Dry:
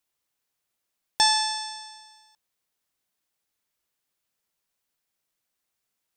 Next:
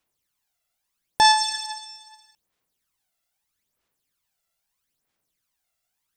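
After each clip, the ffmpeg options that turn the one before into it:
ffmpeg -i in.wav -af "aphaser=in_gain=1:out_gain=1:delay=1.5:decay=0.63:speed=0.78:type=sinusoidal" out.wav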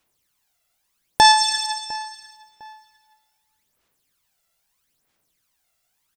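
ffmpeg -i in.wav -filter_complex "[0:a]asplit=2[link_01][link_02];[link_02]adelay=704,lowpass=frequency=2900:poles=1,volume=-21dB,asplit=2[link_03][link_04];[link_04]adelay=704,lowpass=frequency=2900:poles=1,volume=0.3[link_05];[link_01][link_03][link_05]amix=inputs=3:normalize=0,asplit=2[link_06][link_07];[link_07]acompressor=threshold=-24dB:ratio=6,volume=-1dB[link_08];[link_06][link_08]amix=inputs=2:normalize=0,volume=1.5dB" out.wav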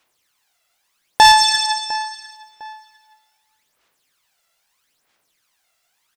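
ffmpeg -i in.wav -filter_complex "[0:a]asplit=2[link_01][link_02];[link_02]highpass=frequency=720:poles=1,volume=12dB,asoftclip=type=tanh:threshold=-1dB[link_03];[link_01][link_03]amix=inputs=2:normalize=0,lowpass=frequency=4900:poles=1,volume=-6dB,volume=1dB" out.wav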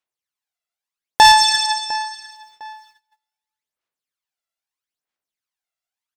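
ffmpeg -i in.wav -af "agate=range=-22dB:threshold=-50dB:ratio=16:detection=peak" out.wav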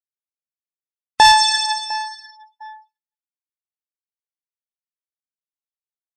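ffmpeg -i in.wav -af "afftdn=noise_reduction=33:noise_floor=-32,volume=-1dB" out.wav

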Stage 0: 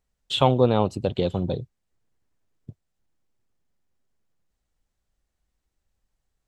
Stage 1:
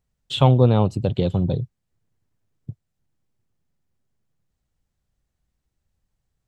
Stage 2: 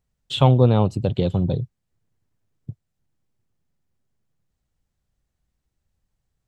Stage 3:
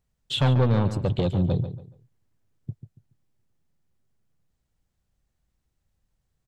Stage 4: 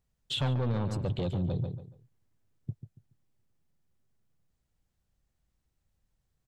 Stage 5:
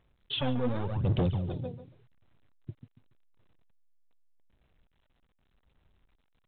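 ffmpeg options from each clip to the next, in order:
ffmpeg -i in.wav -af "equalizer=frequency=120:width_type=o:width=1.6:gain=10,volume=-1dB" out.wav
ffmpeg -i in.wav -af anull out.wav
ffmpeg -i in.wav -filter_complex "[0:a]asoftclip=type=tanh:threshold=-16dB,asplit=2[link_01][link_02];[link_02]adelay=141,lowpass=frequency=3400:poles=1,volume=-10.5dB,asplit=2[link_03][link_04];[link_04]adelay=141,lowpass=frequency=3400:poles=1,volume=0.29,asplit=2[link_05][link_06];[link_06]adelay=141,lowpass=frequency=3400:poles=1,volume=0.29[link_07];[link_03][link_05][link_07]amix=inputs=3:normalize=0[link_08];[link_01][link_08]amix=inputs=2:normalize=0" out.wav
ffmpeg -i in.wav -af "alimiter=limit=-22dB:level=0:latency=1:release=41,volume=-2.5dB" out.wav
ffmpeg -i in.wav -af "aphaser=in_gain=1:out_gain=1:delay=4.2:decay=0.68:speed=0.86:type=sinusoidal,asoftclip=type=hard:threshold=-21dB,volume=-1.5dB" -ar 8000 -c:a pcm_alaw out.wav

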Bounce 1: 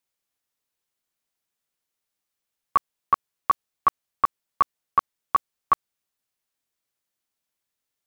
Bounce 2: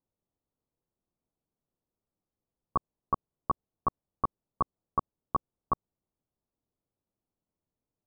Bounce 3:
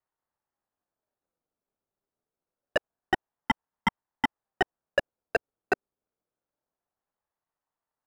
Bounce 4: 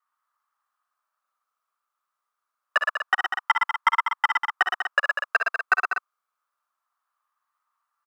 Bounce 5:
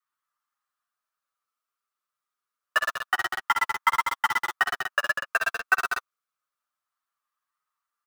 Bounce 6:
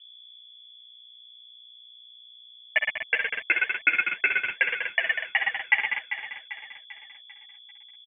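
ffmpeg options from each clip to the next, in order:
ffmpeg -i in.wav -af "lowpass=frequency=1200:width=0.5412,lowpass=frequency=1200:width=1.3066,tiltshelf=frequency=710:gain=10,alimiter=limit=-15dB:level=0:latency=1:release=79" out.wav
ffmpeg -i in.wav -filter_complex "[0:a]equalizer=frequency=970:width_type=o:width=1.4:gain=10.5,acrossover=split=190|500[link_01][link_02][link_03];[link_03]aeval=exprs='max(val(0),0)':channel_layout=same[link_04];[link_01][link_02][link_04]amix=inputs=3:normalize=0,aeval=exprs='val(0)*sin(2*PI*660*n/s+660*0.4/0.26*sin(2*PI*0.26*n/s))':channel_layout=same" out.wav
ffmpeg -i in.wav -af "highpass=frequency=1200:width_type=q:width=7.8,aecho=1:1:52|63|114|117|195|244:0.158|0.473|0.355|0.501|0.398|0.335,volume=1.5dB" out.wav
ffmpeg -i in.wav -filter_complex "[0:a]acrossover=split=670|1300|2700[link_01][link_02][link_03][link_04];[link_02]acrusher=bits=4:mix=0:aa=0.000001[link_05];[link_01][link_05][link_03][link_04]amix=inputs=4:normalize=0,flanger=delay=7.2:depth=1.3:regen=9:speed=1.7:shape=sinusoidal,volume=1.5dB" out.wav
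ffmpeg -i in.wav -filter_complex "[0:a]aeval=exprs='val(0)+0.00398*(sin(2*PI*60*n/s)+sin(2*PI*2*60*n/s)/2+sin(2*PI*3*60*n/s)/3+sin(2*PI*4*60*n/s)/4+sin(2*PI*5*60*n/s)/5)':channel_layout=same,asplit=2[link_01][link_02];[link_02]aecho=0:1:394|788|1182|1576|1970:0.299|0.143|0.0688|0.033|0.0158[link_03];[link_01][link_03]amix=inputs=2:normalize=0,lowpass=frequency=3000:width_type=q:width=0.5098,lowpass=frequency=3000:width_type=q:width=0.6013,lowpass=frequency=3000:width_type=q:width=0.9,lowpass=frequency=3000:width_type=q:width=2.563,afreqshift=-3500" out.wav

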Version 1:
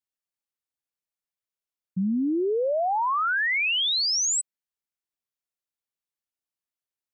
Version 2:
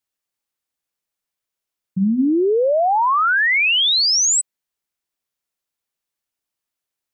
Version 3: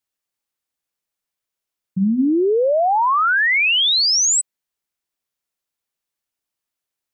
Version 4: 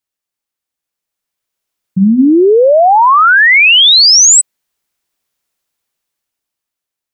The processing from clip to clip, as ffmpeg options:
ffmpeg -i in.wav -af "bandreject=frequency=60:width_type=h:width=6,bandreject=frequency=120:width_type=h:width=6,bandreject=frequency=180:width_type=h:width=6,bandreject=frequency=240:width_type=h:width=6,volume=8dB" out.wav
ffmpeg -i in.wav -af anull out.wav
ffmpeg -i in.wav -af "dynaudnorm=framelen=260:gausssize=11:maxgain=12dB,volume=1dB" out.wav

